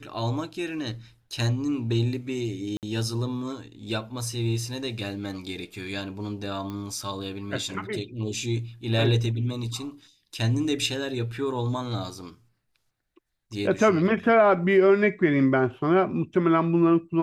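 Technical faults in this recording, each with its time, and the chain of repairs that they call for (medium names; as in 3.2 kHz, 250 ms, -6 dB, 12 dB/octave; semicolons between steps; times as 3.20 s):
2.77–2.83 s: dropout 58 ms
6.70 s: pop -23 dBFS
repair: de-click; interpolate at 2.77 s, 58 ms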